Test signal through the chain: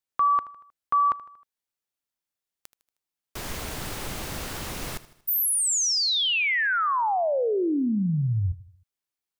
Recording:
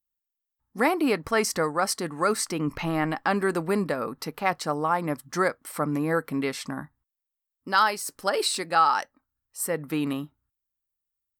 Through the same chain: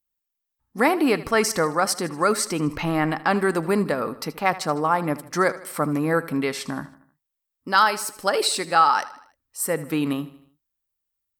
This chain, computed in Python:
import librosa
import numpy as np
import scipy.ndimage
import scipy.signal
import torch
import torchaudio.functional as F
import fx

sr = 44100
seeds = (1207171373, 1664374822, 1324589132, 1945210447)

y = fx.echo_feedback(x, sr, ms=78, feedback_pct=50, wet_db=-17)
y = y * librosa.db_to_amplitude(3.5)